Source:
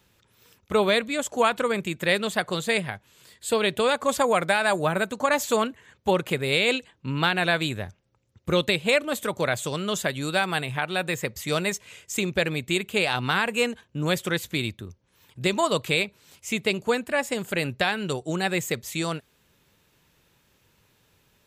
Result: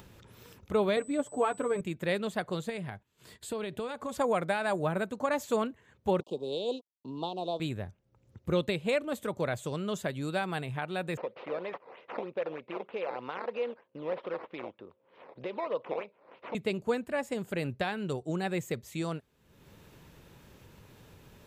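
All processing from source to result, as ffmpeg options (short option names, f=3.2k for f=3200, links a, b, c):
-filter_complex "[0:a]asettb=1/sr,asplit=3[a][b][c];[a]atrim=end=0.964[d];[b]atrim=start=0.96:end=1.81,asetpts=PTS-STARTPTS,afade=t=in:d=0.004:c=qsin,afade=t=out:st=0.846:d=0.004:c=qsin,highshelf=f=2.1k:g=-11,aecho=1:1:6.9:0.8,atrim=end_sample=37485,aeval=exprs='val(0)+0.0141*sin(2*PI*8000*n/s)':c=same[e];[c]atrim=start=1.806[f];[d][e]acrossfade=d=0.004:c1=hsin:c2=qsin[g];[g][f]acrossfade=d=0.004:c1=qsin:c2=hsin,asettb=1/sr,asplit=3[h][i][j];[h]atrim=end=2.694[k];[i]atrim=start=2.69:end=4.18,asetpts=PTS-STARTPTS,afade=t=in:d=0.004:c=qsin,afade=t=out:st=1.486:d=0.004:c=qsin,bandreject=f=530:w=10,agate=range=-13dB:threshold=-56dB:ratio=16:release=100:detection=peak,acompressor=threshold=-25dB:ratio=6:attack=3.2:release=140:knee=1:detection=peak[l];[j]atrim=start=4.176[m];[k][l]acrossfade=d=0.004:c1=hsin:c2=qsin[n];[n][m]acrossfade=d=0.004:c1=qsin:c2=hsin,asettb=1/sr,asplit=3[o][p][q];[o]atrim=end=6.204[r];[p]atrim=start=6.2:end=7.6,asetpts=PTS-STARTPTS,afade=t=in:d=0.004:c=qsin,afade=t=out:st=1.396:d=0.004:c=qsin,aeval=exprs='sgn(val(0))*max(abs(val(0))-0.00596,0)':c=same,asuperstop=centerf=1800:order=8:qfactor=0.8,acrossover=split=240 6500:gain=0.126 1 0.0891[s][t][u];[s][t][u]amix=inputs=3:normalize=0[v];[q]atrim=start=7.596[w];[r][v]acrossfade=d=0.004:c1=hsin:c2=qsin[x];[x][w]acrossfade=d=0.004:c1=qsin:c2=hsin,asettb=1/sr,asplit=3[y][z][aa];[y]atrim=end=11.174[ab];[z]atrim=start=11.17:end=16.55,asetpts=PTS-STARTPTS,afade=t=in:d=0.004:c=qsin,afade=t=out:st=5.376:d=0.004:c=qsin,acompressor=threshold=-25dB:ratio=3:attack=3.2:release=140:knee=1:detection=peak,acrusher=samples=10:mix=1:aa=0.000001:lfo=1:lforange=10:lforate=3.2,highpass=400,equalizer=f=520:t=q:w=4:g=9,equalizer=f=990:t=q:w=4:g=4,equalizer=f=1.6k:t=q:w=4:g=-3,lowpass=f=3.3k:w=0.5412,lowpass=f=3.3k:w=1.3066[ac];[aa]atrim=start=16.546[ad];[ab][ac]acrossfade=d=0.004:c1=hsin:c2=qsin[ae];[ae][ad]acrossfade=d=0.004:c1=qsin:c2=hsin,tiltshelf=f=1.2k:g=5,acompressor=mode=upward:threshold=-31dB:ratio=2.5,volume=-9dB"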